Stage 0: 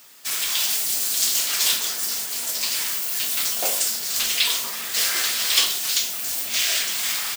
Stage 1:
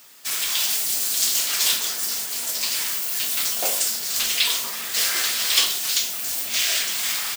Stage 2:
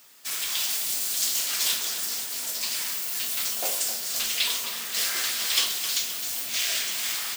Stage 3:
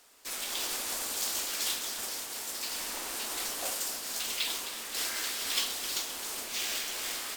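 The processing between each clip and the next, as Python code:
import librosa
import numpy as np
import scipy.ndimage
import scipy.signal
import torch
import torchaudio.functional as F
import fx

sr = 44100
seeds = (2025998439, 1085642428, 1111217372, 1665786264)

y1 = x
y2 = fx.echo_feedback(y1, sr, ms=261, feedback_pct=57, wet_db=-11)
y2 = y2 * librosa.db_to_amplitude(-5.0)
y3 = np.repeat(y2[::2], 2)[:len(y2)]
y3 = y3 * librosa.db_to_amplitude(-7.0)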